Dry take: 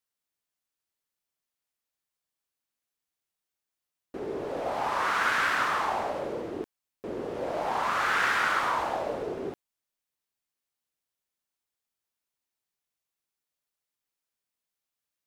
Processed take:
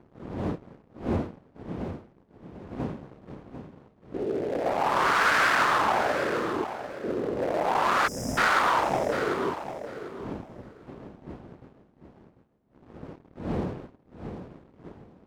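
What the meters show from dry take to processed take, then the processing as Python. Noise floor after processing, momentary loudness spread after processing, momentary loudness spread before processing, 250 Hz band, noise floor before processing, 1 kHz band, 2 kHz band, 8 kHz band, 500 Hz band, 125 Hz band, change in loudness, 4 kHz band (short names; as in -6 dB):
-61 dBFS, 24 LU, 15 LU, +9.0 dB, under -85 dBFS, +4.0 dB, +2.5 dB, +4.5 dB, +5.5 dB, +13.0 dB, +1.5 dB, +3.5 dB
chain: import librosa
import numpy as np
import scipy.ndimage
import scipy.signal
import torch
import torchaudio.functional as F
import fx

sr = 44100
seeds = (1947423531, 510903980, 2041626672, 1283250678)

p1 = fx.wiener(x, sr, points=41)
p2 = fx.dmg_wind(p1, sr, seeds[0], corner_hz=310.0, level_db=-44.0)
p3 = fx.highpass(p2, sr, hz=120.0, slope=6)
p4 = fx.leveller(p3, sr, passes=2)
p5 = fx.spec_erase(p4, sr, start_s=8.07, length_s=0.31, low_hz=280.0, high_hz=4900.0)
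y = p5 + fx.echo_feedback(p5, sr, ms=746, feedback_pct=19, wet_db=-10, dry=0)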